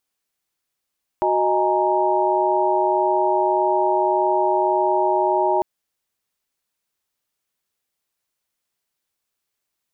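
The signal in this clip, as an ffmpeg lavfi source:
ffmpeg -f lavfi -i "aevalsrc='0.0841*(sin(2*PI*369.99*t)+sin(2*PI*622.25*t)+sin(2*PI*830.61*t)+sin(2*PI*932.33*t))':duration=4.4:sample_rate=44100" out.wav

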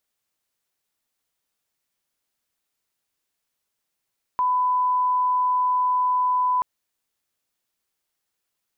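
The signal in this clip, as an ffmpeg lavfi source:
ffmpeg -f lavfi -i "sine=frequency=1000:duration=2.23:sample_rate=44100,volume=0.06dB" out.wav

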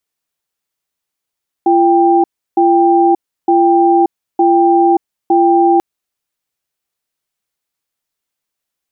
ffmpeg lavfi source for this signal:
ffmpeg -f lavfi -i "aevalsrc='0.335*(sin(2*PI*342*t)+sin(2*PI*790*t))*clip(min(mod(t,0.91),0.58-mod(t,0.91))/0.005,0,1)':duration=4.14:sample_rate=44100" out.wav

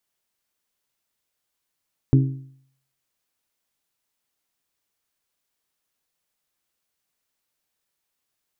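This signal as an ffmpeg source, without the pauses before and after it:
ffmpeg -f lavfi -i "aevalsrc='0.316*pow(10,-3*t/0.62)*sin(2*PI*134*t)+0.158*pow(10,-3*t/0.504)*sin(2*PI*268*t)+0.0794*pow(10,-3*t/0.477)*sin(2*PI*321.6*t)+0.0398*pow(10,-3*t/0.446)*sin(2*PI*402*t)':duration=1.55:sample_rate=44100" out.wav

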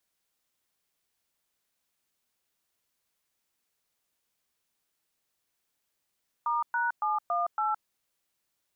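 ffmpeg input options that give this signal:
ffmpeg -f lavfi -i "aevalsrc='0.0398*clip(min(mod(t,0.28),0.166-mod(t,0.28))/0.002,0,1)*(eq(floor(t/0.28),0)*(sin(2*PI*941*mod(t,0.28))+sin(2*PI*1209*mod(t,0.28)))+eq(floor(t/0.28),1)*(sin(2*PI*941*mod(t,0.28))+sin(2*PI*1477*mod(t,0.28)))+eq(floor(t/0.28),2)*(sin(2*PI*852*mod(t,0.28))+sin(2*PI*1209*mod(t,0.28)))+eq(floor(t/0.28),3)*(sin(2*PI*697*mod(t,0.28))+sin(2*PI*1209*mod(t,0.28)))+eq(floor(t/0.28),4)*(sin(2*PI*852*mod(t,0.28))+sin(2*PI*1336*mod(t,0.28))))':duration=1.4:sample_rate=44100" out.wav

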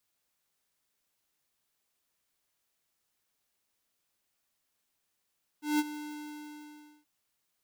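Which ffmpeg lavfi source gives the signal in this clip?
ffmpeg -f lavfi -i "aevalsrc='0.0531*(2*lt(mod(299*t,1),0.5)-1)':duration=1.43:sample_rate=44100,afade=type=in:duration=0.172,afade=type=out:start_time=0.172:duration=0.036:silence=0.188,afade=type=out:start_time=0.32:duration=1.11" out.wav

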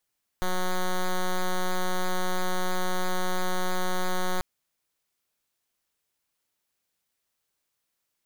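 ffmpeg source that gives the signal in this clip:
ffmpeg -f lavfi -i "aevalsrc='0.0562*(2*lt(mod(183*t,1),0.07)-1)':duration=3.99:sample_rate=44100" out.wav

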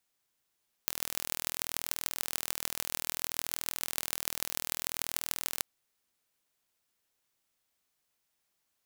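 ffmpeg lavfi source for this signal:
ffmpeg -f lavfi -i "aevalsrc='0.794*eq(mod(n,1086),0)*(0.5+0.5*eq(mod(n,6516),0))':duration=4.75:sample_rate=44100" out.wav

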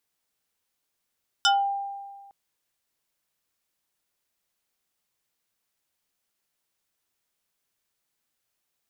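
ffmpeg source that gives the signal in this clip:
ffmpeg -f lavfi -i "aevalsrc='0.168*pow(10,-3*t/1.6)*sin(2*PI*796*t+2.8*pow(10,-3*t/0.25)*sin(2*PI*2.77*796*t))':duration=0.86:sample_rate=44100" out.wav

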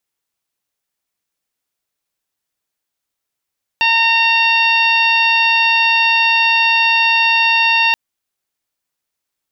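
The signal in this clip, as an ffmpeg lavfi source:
ffmpeg -f lavfi -i "aevalsrc='0.141*sin(2*PI*915*t)+0.112*sin(2*PI*1830*t)+0.237*sin(2*PI*2745*t)+0.0891*sin(2*PI*3660*t)+0.0473*sin(2*PI*4575*t)+0.0224*sin(2*PI*5490*t)':duration=4.13:sample_rate=44100" out.wav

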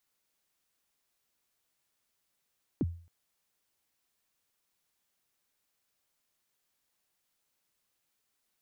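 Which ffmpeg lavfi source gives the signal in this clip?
ffmpeg -f lavfi -i "aevalsrc='0.0708*pow(10,-3*t/0.43)*sin(2*PI*(370*0.035/log(85/370)*(exp(log(85/370)*min(t,0.035)/0.035)-1)+85*max(t-0.035,0)))':duration=0.27:sample_rate=44100" out.wav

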